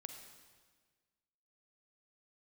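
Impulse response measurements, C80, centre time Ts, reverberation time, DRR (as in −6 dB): 7.0 dB, 35 ms, 1.5 s, 5.0 dB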